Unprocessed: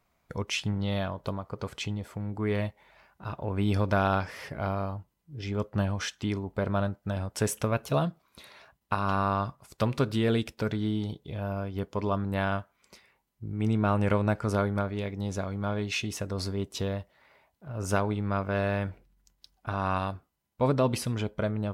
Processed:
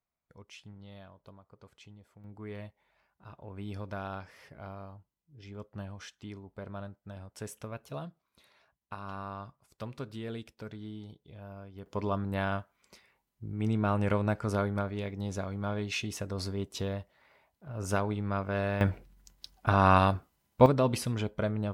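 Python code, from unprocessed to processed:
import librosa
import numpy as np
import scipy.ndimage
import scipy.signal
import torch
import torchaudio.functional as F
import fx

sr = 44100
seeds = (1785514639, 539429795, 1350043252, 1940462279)

y = fx.gain(x, sr, db=fx.steps((0.0, -20.0), (2.24, -13.5), (11.86, -3.0), (18.81, 7.0), (20.66, -1.5)))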